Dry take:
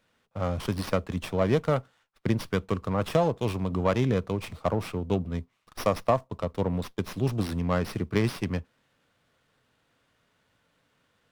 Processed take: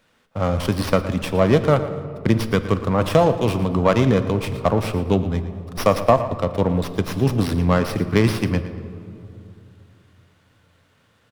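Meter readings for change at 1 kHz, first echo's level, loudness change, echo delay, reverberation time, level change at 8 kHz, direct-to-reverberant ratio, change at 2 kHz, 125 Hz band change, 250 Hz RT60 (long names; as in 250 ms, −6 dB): +8.5 dB, −14.0 dB, +8.5 dB, 115 ms, 2.8 s, +8.0 dB, 9.5 dB, +8.5 dB, +8.5 dB, 3.2 s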